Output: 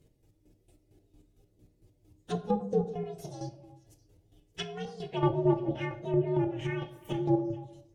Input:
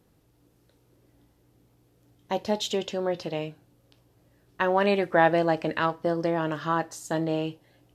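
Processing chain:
partials spread apart or drawn together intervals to 130%
0:02.80–0:05.13: downward compressor 6 to 1, threshold −35 dBFS, peak gain reduction 14 dB
square-wave tremolo 4.4 Hz, depth 65%, duty 35%
hum removal 95.04 Hz, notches 17
treble cut that deepens with the level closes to 830 Hz, closed at −28.5 dBFS
parametric band 1,200 Hz −15 dB 1.4 octaves
echo through a band-pass that steps 144 ms, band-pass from 320 Hz, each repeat 1.4 octaves, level −11 dB
convolution reverb RT60 0.65 s, pre-delay 6 ms, DRR 8.5 dB
level +6 dB

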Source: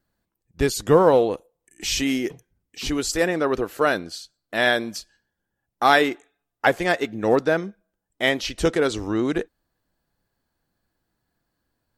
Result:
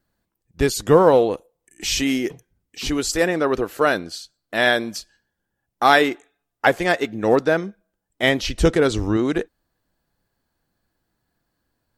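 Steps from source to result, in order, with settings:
0:08.23–0:09.17: low-shelf EQ 160 Hz +10.5 dB
level +2 dB

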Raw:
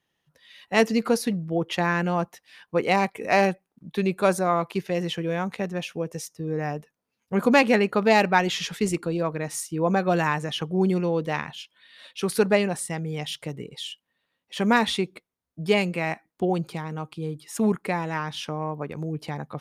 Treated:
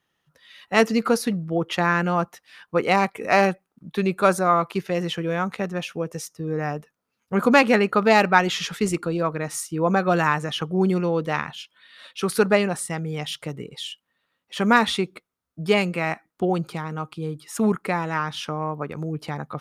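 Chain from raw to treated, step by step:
parametric band 1,300 Hz +7.5 dB 0.42 octaves
level +1.5 dB

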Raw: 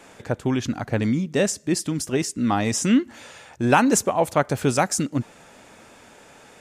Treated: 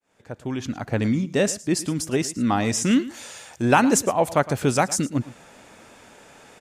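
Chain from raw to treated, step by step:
fade in at the beginning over 1.02 s
0:02.91–0:03.62: bass and treble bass −3 dB, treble +10 dB
single-tap delay 111 ms −17.5 dB

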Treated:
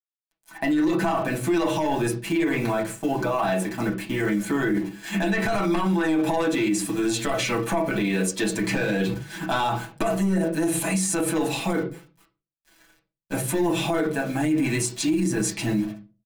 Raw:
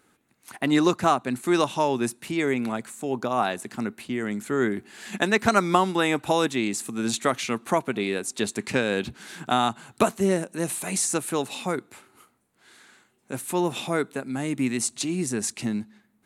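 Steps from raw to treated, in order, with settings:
bit-depth reduction 8 bits, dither none
noise gate −40 dBFS, range −11 dB
soft clipping −15 dBFS, distortion −14 dB
comb filter 6.1 ms, depth 83%
convolution reverb RT60 0.35 s, pre-delay 3 ms, DRR −1 dB
brickwall limiter −16.5 dBFS, peak gain reduction 14.5 dB
level +1 dB

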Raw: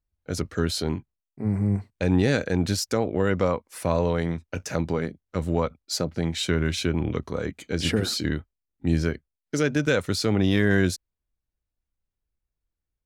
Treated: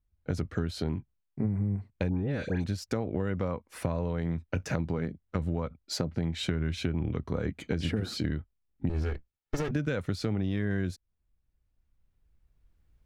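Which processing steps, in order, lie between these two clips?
0:08.89–0:09.71: lower of the sound and its delayed copy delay 2.3 ms
camcorder AGC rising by 7.4 dB per second
bass and treble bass +7 dB, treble −9 dB
downward compressor, threshold −25 dBFS, peak gain reduction 13.5 dB
0:02.09–0:02.64: all-pass dispersion highs, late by 119 ms, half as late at 2,000 Hz
level −1.5 dB

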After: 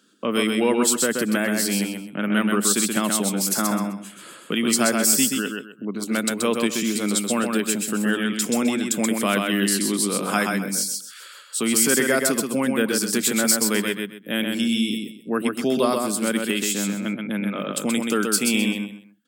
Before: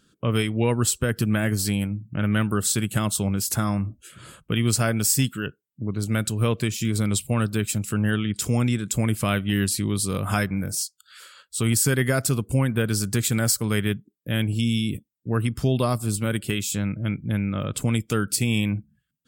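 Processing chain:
Butterworth high-pass 200 Hz 36 dB per octave
on a send: repeating echo 129 ms, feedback 25%, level −4 dB
on the sum: level +3 dB

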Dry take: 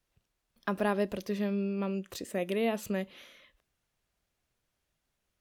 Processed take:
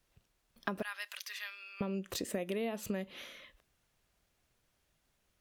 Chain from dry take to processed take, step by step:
0:00.82–0:01.81: high-pass filter 1,400 Hz 24 dB per octave
downward compressor 12 to 1, threshold −37 dBFS, peak gain reduction 13 dB
level +4.5 dB

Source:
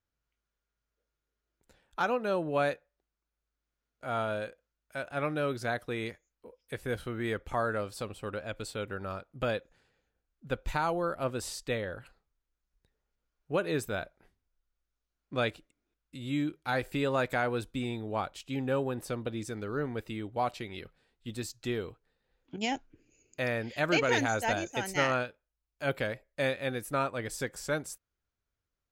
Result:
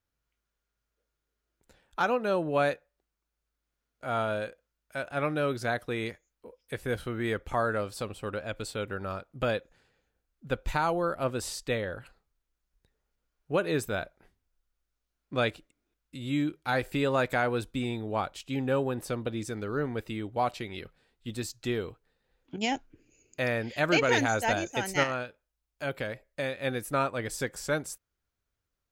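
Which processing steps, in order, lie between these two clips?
0:25.03–0:26.64: downward compressor 2 to 1, threshold −35 dBFS, peak gain reduction 6 dB
level +2.5 dB

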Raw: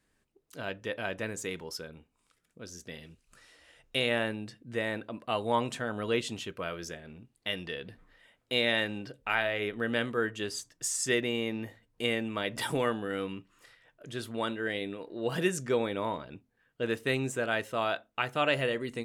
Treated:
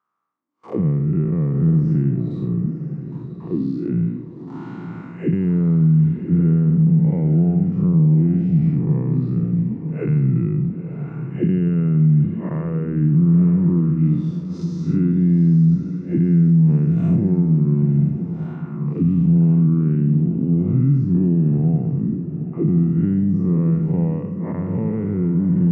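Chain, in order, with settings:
spectrum smeared in time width 132 ms
noise gate with hold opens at −56 dBFS
high-pass filter 130 Hz
parametric band 210 Hz +8.5 dB 3 octaves
downward compressor 6 to 1, threshold −34 dBFS, peak gain reduction 13.5 dB
envelope filter 210–1,500 Hz, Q 4.2, down, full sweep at −37.5 dBFS
feedback delay with all-pass diffusion 721 ms, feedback 44%, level −10 dB
wrong playback speed 45 rpm record played at 33 rpm
boost into a limiter +36 dB
level −7.5 dB

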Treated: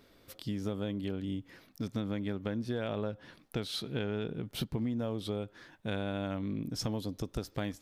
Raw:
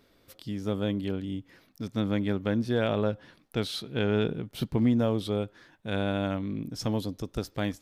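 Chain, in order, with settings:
downward compressor 6 to 1, threshold −33 dBFS, peak gain reduction 12.5 dB
level +1.5 dB

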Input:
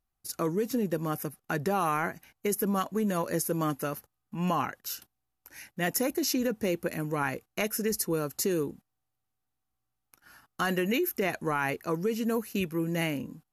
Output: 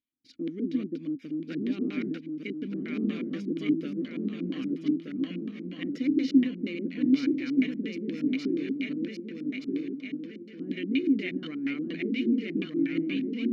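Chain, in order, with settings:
feedback delay that plays each chunk backwards 613 ms, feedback 72%, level −1 dB
auto-filter low-pass square 4.2 Hz 330–4,100 Hz
formant filter i
level +5.5 dB

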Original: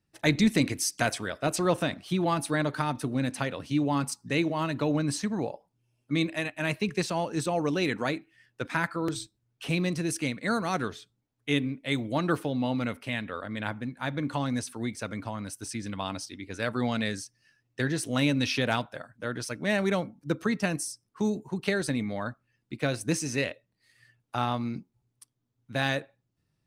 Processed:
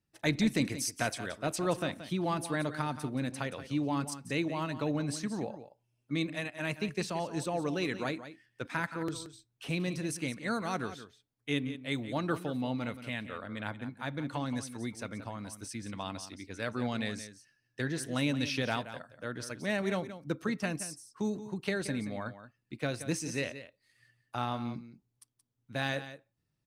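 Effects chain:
single-tap delay 176 ms −12.5 dB
level −5.5 dB

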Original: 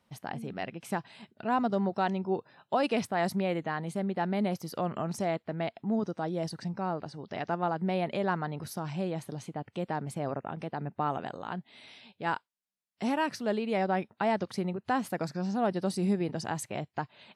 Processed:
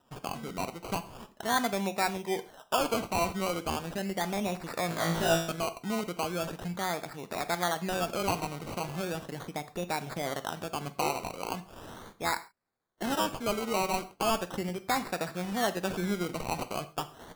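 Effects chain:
low-shelf EQ 370 Hz −10 dB
in parallel at +2 dB: downward compressor, threshold −42 dBFS, peak gain reduction 16 dB
on the sum: sample-and-hold swept by an LFO 20×, swing 60% 0.38 Hz
0:04.87–0:05.52: flutter between parallel walls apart 3.1 metres, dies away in 0.57 s
reverb whose tail is shaped and stops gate 160 ms falling, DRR 10.5 dB

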